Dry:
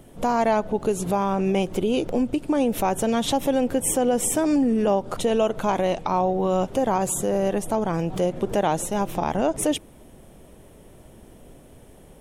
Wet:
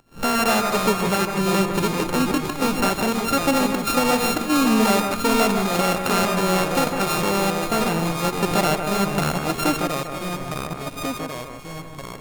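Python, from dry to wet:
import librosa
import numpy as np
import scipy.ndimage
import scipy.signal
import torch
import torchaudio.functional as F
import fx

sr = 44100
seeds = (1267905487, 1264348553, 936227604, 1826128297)

p1 = np.r_[np.sort(x[:len(x) // 32 * 32].reshape(-1, 32), axis=1).ravel(), x[len(x) // 32 * 32:]]
p2 = fx.volume_shaper(p1, sr, bpm=96, per_beat=1, depth_db=-18, release_ms=118.0, shape='slow start')
p3 = fx.echo_pitch(p2, sr, ms=209, semitones=-2, count=2, db_per_echo=-6.0)
p4 = p3 + fx.echo_alternate(p3, sr, ms=154, hz=2400.0, feedback_pct=55, wet_db=-6, dry=0)
y = p4 * librosa.db_to_amplitude(1.0)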